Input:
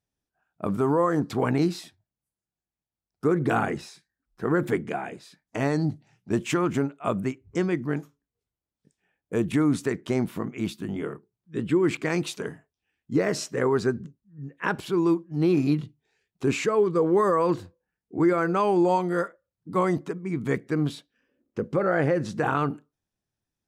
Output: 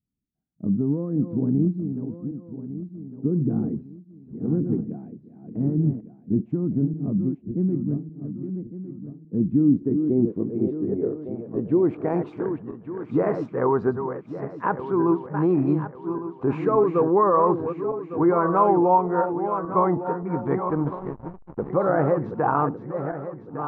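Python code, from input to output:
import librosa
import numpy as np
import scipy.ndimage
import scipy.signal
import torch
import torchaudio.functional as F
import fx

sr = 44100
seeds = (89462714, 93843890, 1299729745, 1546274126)

y = fx.reverse_delay_fb(x, sr, ms=578, feedback_pct=58, wet_db=-8.0)
y = fx.backlash(y, sr, play_db=-28.5, at=(20.69, 21.7))
y = fx.filter_sweep_lowpass(y, sr, from_hz=230.0, to_hz=980.0, start_s=9.38, end_s=12.64, q=2.2)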